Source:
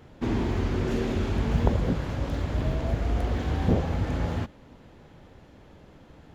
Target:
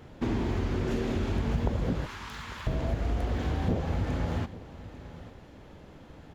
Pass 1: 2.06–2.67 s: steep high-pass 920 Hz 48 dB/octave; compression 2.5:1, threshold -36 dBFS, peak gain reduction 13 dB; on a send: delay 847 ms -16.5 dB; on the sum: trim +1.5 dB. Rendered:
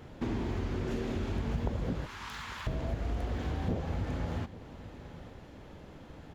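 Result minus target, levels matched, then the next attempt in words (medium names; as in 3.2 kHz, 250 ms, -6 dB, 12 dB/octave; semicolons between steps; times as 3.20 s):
compression: peak gain reduction +4.5 dB
2.06–2.67 s: steep high-pass 920 Hz 48 dB/octave; compression 2.5:1, threshold -28.5 dBFS, peak gain reduction 8.5 dB; on a send: delay 847 ms -16.5 dB; on the sum: trim +1.5 dB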